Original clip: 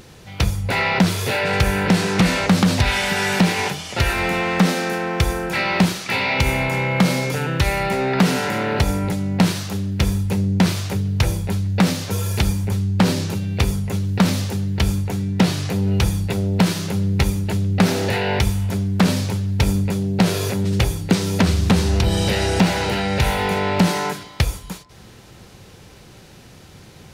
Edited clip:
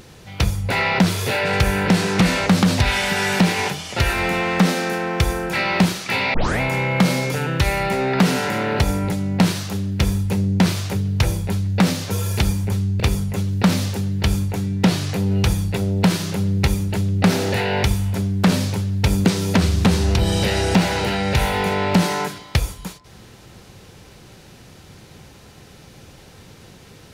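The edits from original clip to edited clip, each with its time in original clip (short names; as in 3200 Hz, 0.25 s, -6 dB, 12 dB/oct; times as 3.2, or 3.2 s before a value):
6.34 tape start 0.26 s
13–13.56 cut
19.81–21.1 cut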